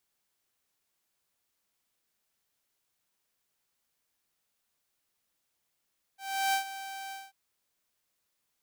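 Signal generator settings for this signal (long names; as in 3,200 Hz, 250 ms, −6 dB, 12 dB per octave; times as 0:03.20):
note with an ADSR envelope saw 779 Hz, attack 353 ms, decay 103 ms, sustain −14 dB, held 0.94 s, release 201 ms −22 dBFS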